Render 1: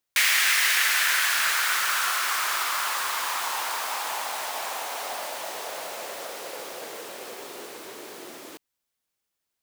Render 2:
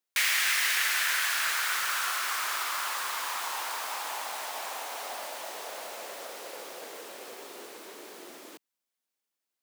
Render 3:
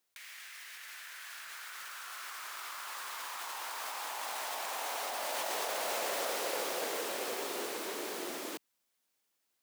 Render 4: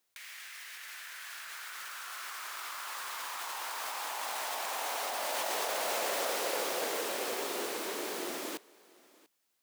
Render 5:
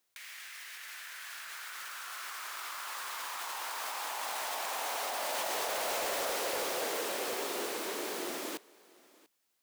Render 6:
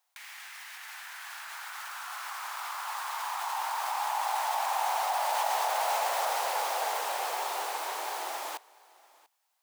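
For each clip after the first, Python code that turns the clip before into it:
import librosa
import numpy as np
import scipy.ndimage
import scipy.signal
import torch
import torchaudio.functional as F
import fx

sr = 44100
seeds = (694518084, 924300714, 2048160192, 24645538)

y1 = scipy.signal.sosfilt(scipy.signal.butter(4, 180.0, 'highpass', fs=sr, output='sos'), x)
y1 = F.gain(torch.from_numpy(y1), -5.0).numpy()
y2 = fx.over_compress(y1, sr, threshold_db=-41.0, ratio=-1.0)
y3 = y2 + 10.0 ** (-23.5 / 20.0) * np.pad(y2, (int(690 * sr / 1000.0), 0))[:len(y2)]
y3 = F.gain(torch.from_numpy(y3), 2.0).numpy()
y4 = np.clip(y3, -10.0 ** (-28.5 / 20.0), 10.0 ** (-28.5 / 20.0))
y5 = fx.highpass_res(y4, sr, hz=820.0, q=4.0)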